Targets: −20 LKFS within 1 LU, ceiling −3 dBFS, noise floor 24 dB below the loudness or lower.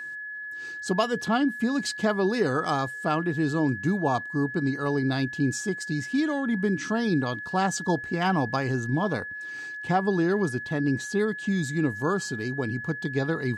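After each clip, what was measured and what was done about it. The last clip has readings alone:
interfering tone 1,700 Hz; level of the tone −34 dBFS; integrated loudness −27.0 LKFS; sample peak −11.0 dBFS; target loudness −20.0 LKFS
→ notch filter 1,700 Hz, Q 30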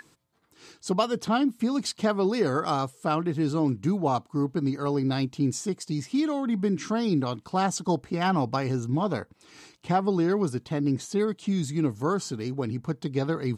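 interfering tone none found; integrated loudness −27.0 LKFS; sample peak −11.5 dBFS; target loudness −20.0 LKFS
→ level +7 dB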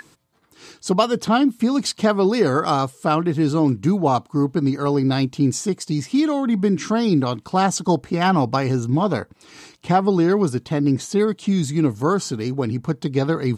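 integrated loudness −20.0 LKFS; sample peak −4.5 dBFS; background noise floor −56 dBFS

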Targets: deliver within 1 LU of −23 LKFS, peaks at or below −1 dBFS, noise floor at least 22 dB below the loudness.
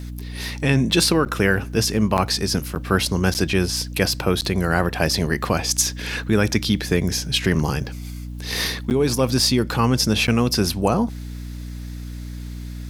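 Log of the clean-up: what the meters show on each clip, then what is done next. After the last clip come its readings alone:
number of dropouts 7; longest dropout 9.0 ms; mains hum 60 Hz; hum harmonics up to 300 Hz; level of the hum −29 dBFS; integrated loudness −20.5 LKFS; sample peak −3.5 dBFS; target loudness −23.0 LKFS
→ repair the gap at 0:01.25/0:02.17/0:02.75/0:03.34/0:04.41/0:08.90/0:10.27, 9 ms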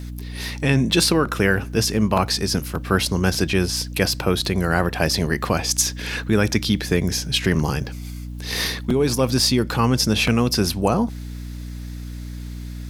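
number of dropouts 0; mains hum 60 Hz; hum harmonics up to 300 Hz; level of the hum −29 dBFS
→ hum removal 60 Hz, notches 5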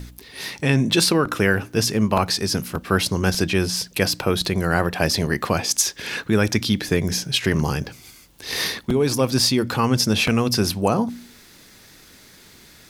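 mains hum none found; integrated loudness −21.0 LKFS; sample peak −4.0 dBFS; target loudness −23.0 LKFS
→ level −2 dB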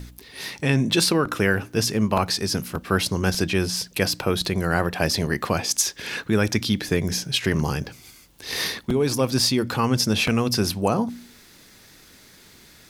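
integrated loudness −23.0 LKFS; sample peak −6.0 dBFS; background noise floor −51 dBFS

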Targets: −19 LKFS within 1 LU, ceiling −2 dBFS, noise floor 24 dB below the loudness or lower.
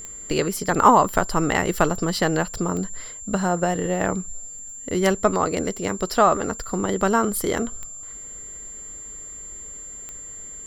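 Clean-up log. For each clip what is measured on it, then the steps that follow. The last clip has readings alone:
number of clicks 5; interfering tone 7,300 Hz; level of the tone −35 dBFS; integrated loudness −22.0 LKFS; sample peak −3.0 dBFS; target loudness −19.0 LKFS
→ click removal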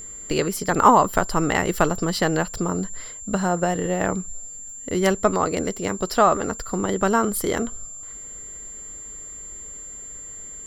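number of clicks 0; interfering tone 7,300 Hz; level of the tone −35 dBFS
→ notch filter 7,300 Hz, Q 30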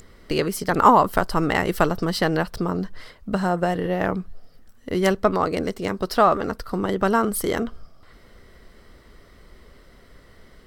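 interfering tone none found; integrated loudness −22.5 LKFS; sample peak −3.0 dBFS; target loudness −19.0 LKFS
→ level +3.5 dB
brickwall limiter −2 dBFS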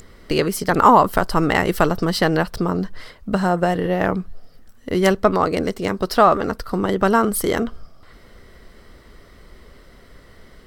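integrated loudness −19.0 LKFS; sample peak −2.0 dBFS; background noise floor −48 dBFS

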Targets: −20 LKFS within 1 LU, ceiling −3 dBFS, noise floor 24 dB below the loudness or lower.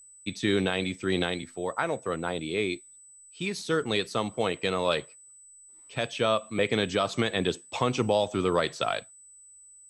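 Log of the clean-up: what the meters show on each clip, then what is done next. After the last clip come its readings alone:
interfering tone 8,000 Hz; level of the tone −50 dBFS; integrated loudness −28.5 LKFS; sample peak −13.0 dBFS; target loudness −20.0 LKFS
→ notch filter 8,000 Hz, Q 30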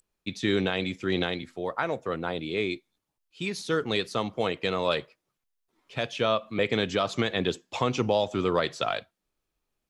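interfering tone none found; integrated loudness −28.5 LKFS; sample peak −13.0 dBFS; target loudness −20.0 LKFS
→ level +8.5 dB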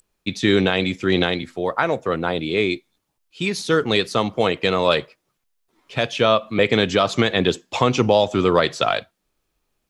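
integrated loudness −20.0 LKFS; sample peak −4.5 dBFS; background noise floor −75 dBFS

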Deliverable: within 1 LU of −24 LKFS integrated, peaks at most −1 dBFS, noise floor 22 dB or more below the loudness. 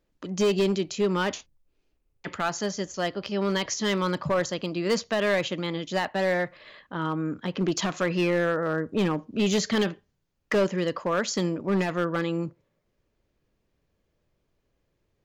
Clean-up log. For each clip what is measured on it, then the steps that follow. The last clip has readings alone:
share of clipped samples 1.3%; peaks flattened at −18.0 dBFS; integrated loudness −27.0 LKFS; sample peak −18.0 dBFS; target loudness −24.0 LKFS
→ clipped peaks rebuilt −18 dBFS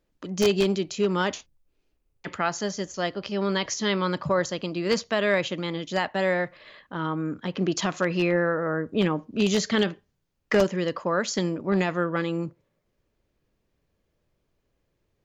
share of clipped samples 0.0%; integrated loudness −26.0 LKFS; sample peak −9.0 dBFS; target loudness −24.0 LKFS
→ level +2 dB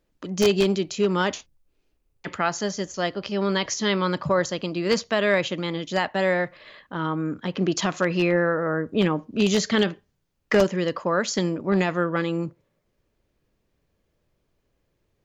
integrated loudness −24.0 LKFS; sample peak −7.0 dBFS; background noise floor −73 dBFS

